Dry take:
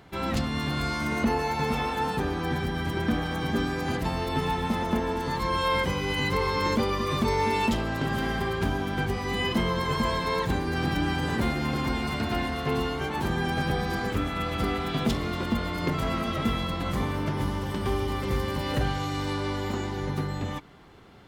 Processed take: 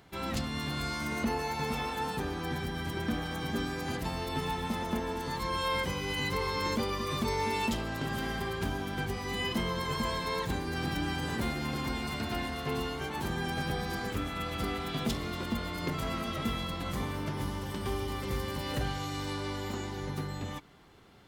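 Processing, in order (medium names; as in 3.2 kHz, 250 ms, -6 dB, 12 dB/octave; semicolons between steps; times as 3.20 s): treble shelf 3.9 kHz +7 dB; trim -6.5 dB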